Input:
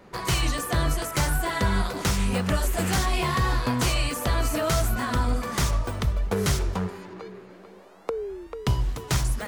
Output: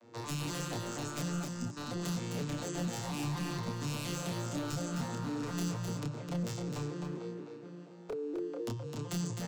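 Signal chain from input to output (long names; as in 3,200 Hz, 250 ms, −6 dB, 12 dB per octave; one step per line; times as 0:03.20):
vocoder with an arpeggio as carrier major triad, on A#2, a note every 238 ms
in parallel at +2.5 dB: brickwall limiter −22 dBFS, peak gain reduction 11 dB
on the sum: downward compressor 6 to 1, threshold −23 dBFS, peak gain reduction 10.5 dB
high-pass filter 170 Hz 12 dB per octave
tilt shelving filter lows −7.5 dB, about 910 Hz
double-tracking delay 28 ms −3 dB
gain on a spectral selection 0:01.45–0:01.77, 290–4,700 Hz −19 dB
hard clipping −28 dBFS, distortion −11 dB
parametric band 1,700 Hz −14 dB 3 octaves
on a send: single-tap delay 259 ms −5 dB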